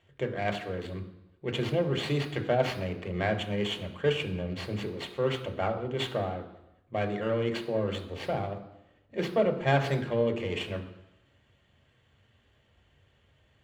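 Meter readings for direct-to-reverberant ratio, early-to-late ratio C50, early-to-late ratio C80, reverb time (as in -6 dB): 5.0 dB, 11.0 dB, 13.0 dB, 0.90 s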